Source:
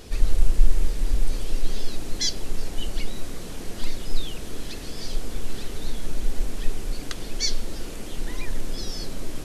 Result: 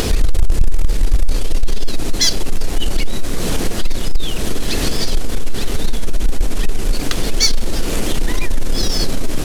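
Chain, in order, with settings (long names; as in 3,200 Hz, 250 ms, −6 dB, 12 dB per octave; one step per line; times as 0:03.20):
upward compression, threshold −17 dBFS
leveller curve on the samples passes 3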